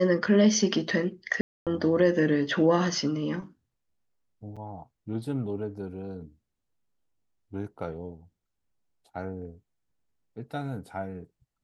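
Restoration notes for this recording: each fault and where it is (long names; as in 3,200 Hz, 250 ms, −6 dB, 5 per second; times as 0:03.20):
0:01.41–0:01.67: drop-out 257 ms
0:04.56–0:04.57: drop-out 5.9 ms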